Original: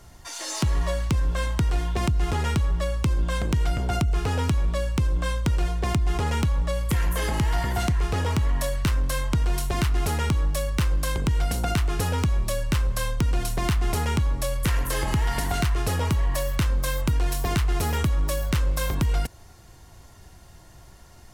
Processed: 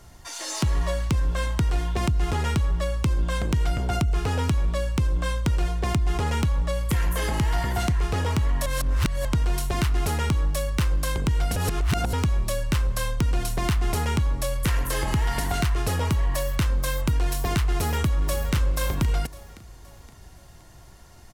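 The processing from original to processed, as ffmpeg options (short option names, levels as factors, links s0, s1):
-filter_complex "[0:a]asplit=2[s0][s1];[s1]afade=t=in:st=17.69:d=0.01,afade=t=out:st=18.53:d=0.01,aecho=0:1:520|1040|1560|2080:0.237137|0.106712|0.0480203|0.0216091[s2];[s0][s2]amix=inputs=2:normalize=0,asplit=5[s3][s4][s5][s6][s7];[s3]atrim=end=8.662[s8];[s4]atrim=start=8.658:end=9.252,asetpts=PTS-STARTPTS,areverse[s9];[s5]atrim=start=9.248:end=11.562[s10];[s6]atrim=start=11.558:end=12.132,asetpts=PTS-STARTPTS,areverse[s11];[s7]atrim=start=12.128[s12];[s8][s9]acrossfade=d=0.004:c1=hsin:c2=hsin[s13];[s13][s10]acrossfade=d=0.004:c1=hsin:c2=hsin[s14];[s14][s11]acrossfade=d=0.004:c1=hsin:c2=hsin[s15];[s15][s12]acrossfade=d=0.004:c1=hsin:c2=hsin"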